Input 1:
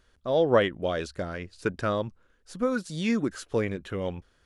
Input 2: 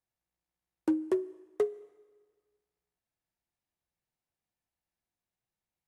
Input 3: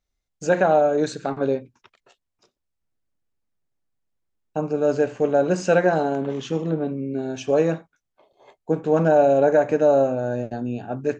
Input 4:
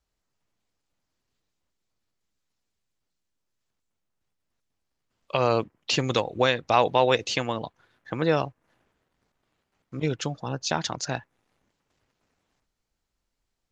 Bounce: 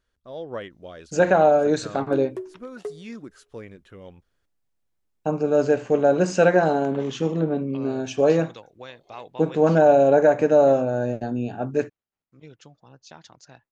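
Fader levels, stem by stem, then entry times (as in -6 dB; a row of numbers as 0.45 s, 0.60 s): -12.0 dB, -4.5 dB, +1.0 dB, -19.0 dB; 0.00 s, 1.25 s, 0.70 s, 2.40 s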